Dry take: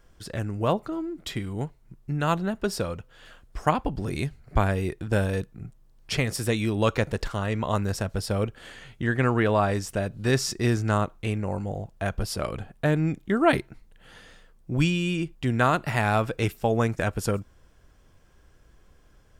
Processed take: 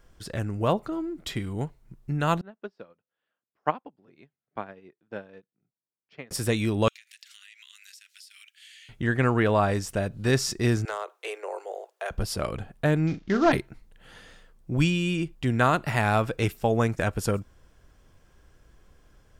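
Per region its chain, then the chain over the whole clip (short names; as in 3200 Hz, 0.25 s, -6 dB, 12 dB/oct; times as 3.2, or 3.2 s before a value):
2.41–6.31 Bessel high-pass 240 Hz, order 4 + air absorption 250 m + upward expander 2.5:1, over -39 dBFS
6.88–8.89 steep high-pass 2100 Hz + compressor 20:1, threshold -45 dBFS
10.85–12.11 steep high-pass 380 Hz 72 dB/oct + compressor 3:1, threshold -28 dBFS + hard clip -23 dBFS
13.07–13.52 CVSD 32 kbps + doubler 42 ms -10 dB
whole clip: dry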